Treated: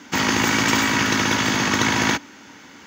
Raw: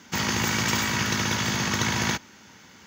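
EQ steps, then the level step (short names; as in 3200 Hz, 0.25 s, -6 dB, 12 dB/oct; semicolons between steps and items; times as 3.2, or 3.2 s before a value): tone controls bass -7 dB, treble -7 dB; bell 280 Hz +11 dB 0.28 oct; bell 8200 Hz +3.5 dB 1 oct; +7.0 dB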